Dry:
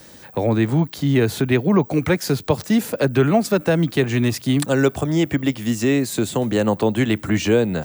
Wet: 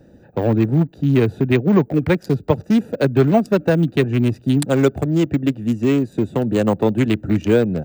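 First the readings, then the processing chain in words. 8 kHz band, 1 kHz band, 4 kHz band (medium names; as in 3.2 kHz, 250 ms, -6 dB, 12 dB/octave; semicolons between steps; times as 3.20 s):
-8.0 dB, 0.0 dB, -4.5 dB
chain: local Wiener filter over 41 samples; trim +2.5 dB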